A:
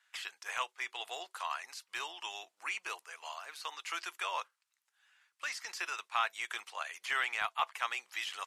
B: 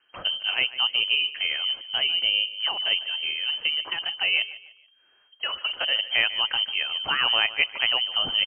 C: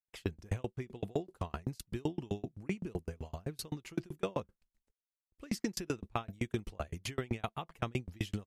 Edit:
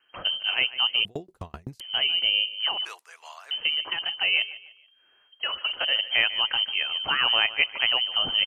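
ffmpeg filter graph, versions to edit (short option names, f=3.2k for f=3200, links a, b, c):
-filter_complex "[1:a]asplit=3[a][b][c];[a]atrim=end=1.052[d];[2:a]atrim=start=1.048:end=1.802[e];[b]atrim=start=1.798:end=2.852[f];[0:a]atrim=start=2.848:end=3.512[g];[c]atrim=start=3.508[h];[d][e]acrossfade=d=0.004:c1=hsin:c2=hsin[i];[i][f]acrossfade=d=0.004:c1=hsin:c2=hsin[j];[j][g]acrossfade=d=0.004:c1=hsin:c2=hsin[k];[k][h]acrossfade=d=0.004:c1=hsin:c2=hsin"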